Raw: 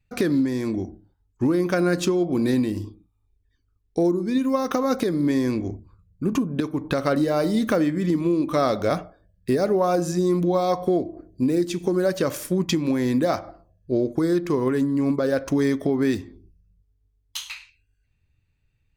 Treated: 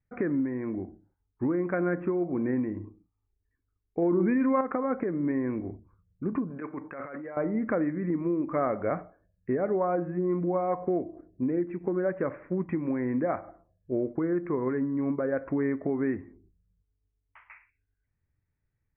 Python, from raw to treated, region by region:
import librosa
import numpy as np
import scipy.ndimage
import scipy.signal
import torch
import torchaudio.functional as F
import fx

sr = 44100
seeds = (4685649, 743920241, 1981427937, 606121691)

y = fx.chain(x, sr, fx.peak_eq(hz=2500.0, db=6.5, octaves=2.7),
    fx.env_flatten(amount_pct=100), at=(4.02, 4.61))
y = fx.chain(y, sr, fx.tilt_eq(slope=3.5),
    fx.over_compress(threshold_db=-31.0, ratio=-1.0), at=(6.5, 7.37))
y = scipy.signal.sosfilt(scipy.signal.butter(12, 2200.0, 'lowpass', fs=sr, output='sos'), y)
y = fx.low_shelf(y, sr, hz=96.0, db=-7.0)
y = fx.end_taper(y, sr, db_per_s=500.0)
y = F.gain(torch.from_numpy(y), -6.0).numpy()